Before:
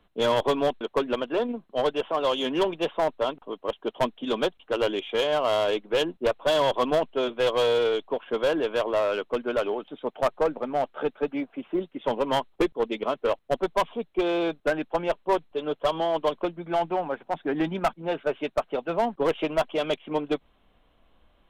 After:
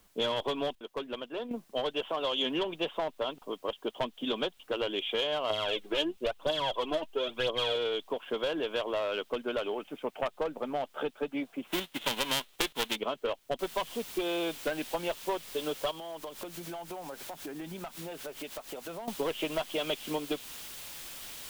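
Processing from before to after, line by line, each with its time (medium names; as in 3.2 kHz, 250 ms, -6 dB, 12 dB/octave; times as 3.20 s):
0.75–1.51 s: gain -9.5 dB
2.42–4.94 s: treble shelf 7.6 kHz -9 dB
5.50–7.76 s: phaser 1 Hz, delay 3.5 ms, feedback 61%
9.77–10.26 s: resonant high shelf 3.4 kHz -11 dB, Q 3
11.66–12.95 s: formants flattened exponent 0.3
13.59 s: noise floor step -65 dB -43 dB
15.91–19.08 s: compression 12:1, threshold -35 dBFS
whole clip: compression 4:1, threshold -28 dBFS; dynamic bell 3.2 kHz, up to +8 dB, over -55 dBFS, Q 1.7; trim -2 dB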